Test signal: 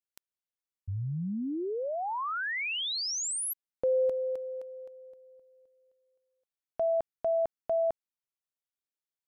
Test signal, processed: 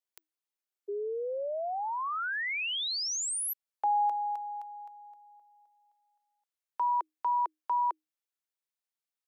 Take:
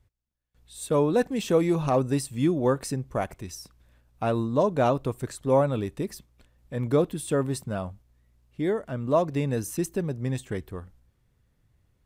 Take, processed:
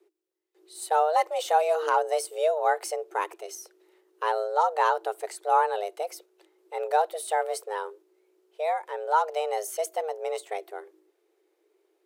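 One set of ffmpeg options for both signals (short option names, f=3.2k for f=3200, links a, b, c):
-af "afreqshift=310,asubboost=boost=8.5:cutoff=97"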